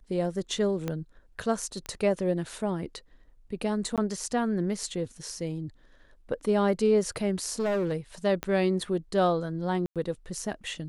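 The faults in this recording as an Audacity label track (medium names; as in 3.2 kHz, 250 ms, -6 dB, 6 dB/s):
0.880000	0.880000	pop -17 dBFS
1.860000	1.860000	pop -21 dBFS
3.960000	3.980000	dropout 17 ms
7.510000	7.930000	clipped -24 dBFS
8.430000	8.430000	pop -16 dBFS
9.860000	9.960000	dropout 97 ms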